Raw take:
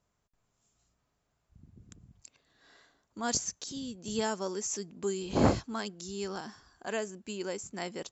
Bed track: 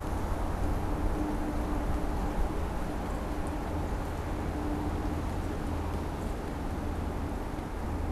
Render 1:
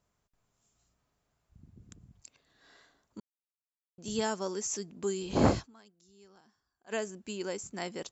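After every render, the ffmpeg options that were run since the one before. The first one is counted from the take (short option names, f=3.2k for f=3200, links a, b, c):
-filter_complex "[0:a]asplit=5[a][b][c][d][e];[a]atrim=end=3.2,asetpts=PTS-STARTPTS,afade=t=out:st=3.196:d=0.004:c=hsin[f];[b]atrim=start=3.2:end=3.98,asetpts=PTS-STARTPTS,volume=0[g];[c]atrim=start=3.98:end=5.86,asetpts=PTS-STARTPTS,afade=t=in:d=0.004:c=hsin,afade=t=out:st=1.67:d=0.21:c=exp:silence=0.0794328[h];[d]atrim=start=5.86:end=6.72,asetpts=PTS-STARTPTS,volume=-22dB[i];[e]atrim=start=6.72,asetpts=PTS-STARTPTS,afade=t=in:d=0.21:c=exp:silence=0.0794328[j];[f][g][h][i][j]concat=n=5:v=0:a=1"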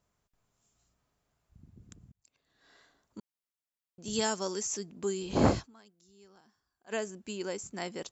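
-filter_complex "[0:a]asettb=1/sr,asplit=3[a][b][c];[a]atrim=end=4.134[d];[b]atrim=start=4.13:end=4.63,asetpts=PTS-STARTPTS,afade=t=in:d=0.004:c=qsin,afade=t=out:st=0.496:d=0.004:c=qsin,highshelf=f=3.1k:g=8[e];[c]atrim=start=4.626[f];[d][e]acrossfade=d=0.004:c1=hsin:c2=qsin[g];[g][f]acrossfade=d=0.004:c1=qsin:c2=hsin,asplit=2[h][i];[h]atrim=end=2.12,asetpts=PTS-STARTPTS,afade=t=out:st=2.116:d=0.004:c=hsin[j];[i]atrim=start=2.12,asetpts=PTS-STARTPTS,afade=t=in:d=1.06:c=qsin[k];[j][k]concat=n=2:v=0:a=1"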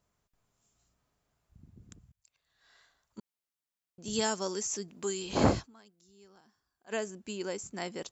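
-filter_complex "[0:a]asettb=1/sr,asplit=3[a][b][c];[a]atrim=end=2.004[d];[b]atrim=start=2:end=3.18,asetpts=PTS-STARTPTS,afade=t=in:d=0.004:c=qsin,afade=t=out:st=1.176:d=0.004:c=qsin,equalizer=f=290:w=0.75:g=-14.5[e];[c]atrim=start=3.176[f];[d][e]acrossfade=d=0.004:c1=hsin:c2=qsin[g];[g][f]acrossfade=d=0.004:c1=qsin:c2=hsin,asettb=1/sr,asplit=3[h][i][j];[h]atrim=end=4.884[k];[i]atrim=start=4.88:end=5.44,asetpts=PTS-STARTPTS,afade=t=in:d=0.004:c=qsin,afade=t=out:st=0.556:d=0.004:c=qsin,tiltshelf=f=650:g=-4.5[l];[j]atrim=start=5.436[m];[k][l]acrossfade=d=0.004:c1=hsin:c2=qsin[n];[n][m]acrossfade=d=0.004:c1=qsin:c2=hsin"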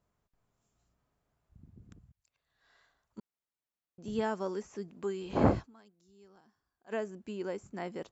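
-filter_complex "[0:a]acrossover=split=2900[a][b];[b]acompressor=threshold=-51dB:ratio=4:attack=1:release=60[c];[a][c]amix=inputs=2:normalize=0,highshelf=f=2.7k:g=-10"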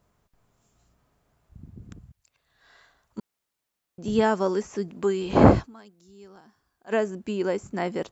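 -af "volume=11dB,alimiter=limit=-1dB:level=0:latency=1"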